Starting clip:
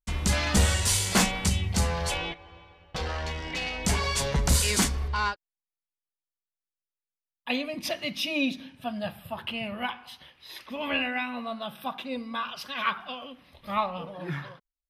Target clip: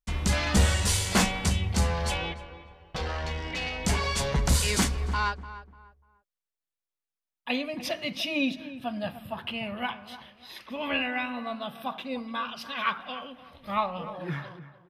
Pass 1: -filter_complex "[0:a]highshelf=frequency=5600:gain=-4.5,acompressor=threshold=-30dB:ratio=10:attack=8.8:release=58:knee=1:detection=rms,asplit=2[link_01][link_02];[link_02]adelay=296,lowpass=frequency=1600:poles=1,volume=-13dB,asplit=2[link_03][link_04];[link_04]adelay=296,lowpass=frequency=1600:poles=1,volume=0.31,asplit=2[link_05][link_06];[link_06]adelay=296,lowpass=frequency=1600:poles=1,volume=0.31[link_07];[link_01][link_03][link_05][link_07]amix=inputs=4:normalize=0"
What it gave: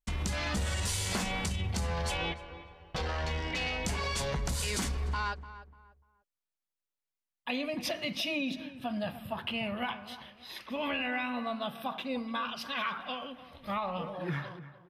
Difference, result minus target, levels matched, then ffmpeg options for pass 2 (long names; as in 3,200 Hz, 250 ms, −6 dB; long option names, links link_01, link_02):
downward compressor: peak gain reduction +14 dB
-filter_complex "[0:a]highshelf=frequency=5600:gain=-4.5,asplit=2[link_01][link_02];[link_02]adelay=296,lowpass=frequency=1600:poles=1,volume=-13dB,asplit=2[link_03][link_04];[link_04]adelay=296,lowpass=frequency=1600:poles=1,volume=0.31,asplit=2[link_05][link_06];[link_06]adelay=296,lowpass=frequency=1600:poles=1,volume=0.31[link_07];[link_01][link_03][link_05][link_07]amix=inputs=4:normalize=0"